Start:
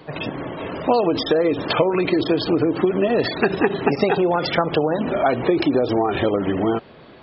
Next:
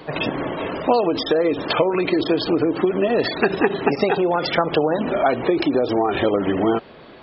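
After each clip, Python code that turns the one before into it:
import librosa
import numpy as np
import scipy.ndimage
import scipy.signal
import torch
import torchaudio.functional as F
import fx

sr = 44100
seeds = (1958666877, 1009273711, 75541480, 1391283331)

y = fx.peak_eq(x, sr, hz=110.0, db=-5.0, octaves=1.6)
y = fx.rider(y, sr, range_db=4, speed_s=0.5)
y = y * 10.0 ** (1.0 / 20.0)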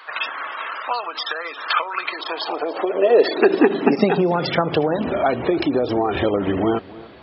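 y = fx.filter_sweep_highpass(x, sr, from_hz=1300.0, to_hz=67.0, start_s=1.99, end_s=5.18, q=2.8)
y = y + 10.0 ** (-20.0 / 20.0) * np.pad(y, (int(285 * sr / 1000.0), 0))[:len(y)]
y = y * 10.0 ** (-1.0 / 20.0)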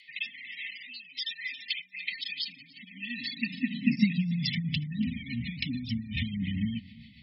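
y = fx.rotary_switch(x, sr, hz=1.2, then_hz=7.0, switch_at_s=3.05)
y = fx.brickwall_bandstop(y, sr, low_hz=260.0, high_hz=1800.0)
y = fx.notch_comb(y, sr, f0_hz=470.0)
y = y * 10.0 ** (-1.5 / 20.0)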